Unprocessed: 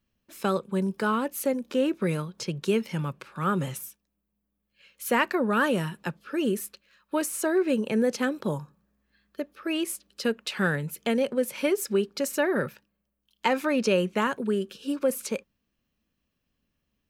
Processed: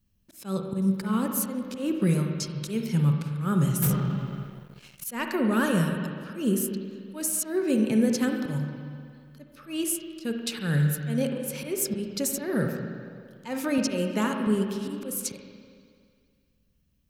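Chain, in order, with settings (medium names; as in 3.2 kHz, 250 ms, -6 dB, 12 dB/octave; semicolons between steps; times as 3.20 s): slow attack 148 ms; tone controls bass +14 dB, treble +11 dB; 13.78–14.47 s: high-pass 190 Hz; reverberation RT60 2.1 s, pre-delay 41 ms, DRR 3 dB; 3.82–5.04 s: waveshaping leveller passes 3; trim -5 dB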